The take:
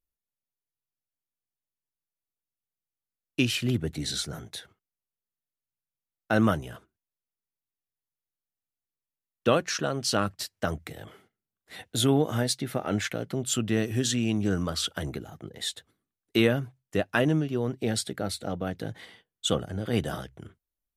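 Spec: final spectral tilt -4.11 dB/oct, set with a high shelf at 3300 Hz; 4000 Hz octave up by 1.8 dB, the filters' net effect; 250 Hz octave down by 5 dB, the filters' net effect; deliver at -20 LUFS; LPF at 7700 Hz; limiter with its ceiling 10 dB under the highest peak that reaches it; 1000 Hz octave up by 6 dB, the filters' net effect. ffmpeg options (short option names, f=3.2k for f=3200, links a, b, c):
-af "lowpass=7.7k,equalizer=f=250:t=o:g=-7,equalizer=f=1k:t=o:g=9,highshelf=f=3.3k:g=-3,equalizer=f=4k:t=o:g=4,volume=10.5dB,alimiter=limit=-5.5dB:level=0:latency=1"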